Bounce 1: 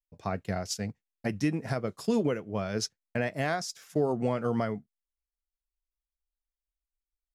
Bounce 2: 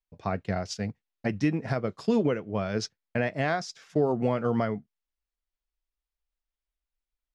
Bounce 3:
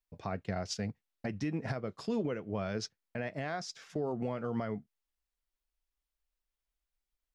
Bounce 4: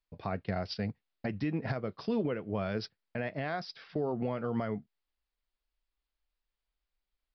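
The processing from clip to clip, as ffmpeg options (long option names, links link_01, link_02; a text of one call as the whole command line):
ffmpeg -i in.wav -af "lowpass=4600,volume=2.5dB" out.wav
ffmpeg -i in.wav -af "alimiter=level_in=1dB:limit=-24dB:level=0:latency=1:release=274,volume=-1dB" out.wav
ffmpeg -i in.wav -af "aresample=11025,aresample=44100,volume=2dB" out.wav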